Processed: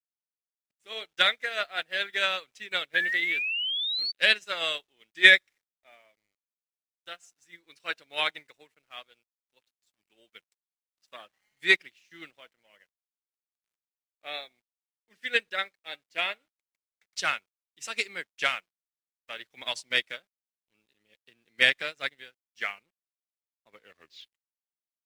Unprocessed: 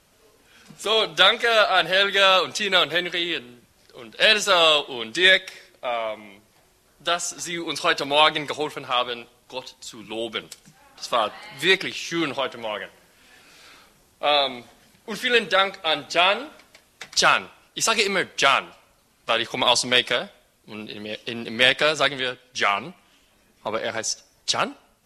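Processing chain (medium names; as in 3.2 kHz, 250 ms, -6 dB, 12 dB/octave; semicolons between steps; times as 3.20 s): tape stop on the ending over 1.38 s; graphic EQ 1/2/8 kHz -5/+10/+4 dB; small samples zeroed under -34.5 dBFS; painted sound rise, 2.94–4.12 s, 1.6–4.6 kHz -14 dBFS; upward expansion 2.5:1, over -30 dBFS; trim -4 dB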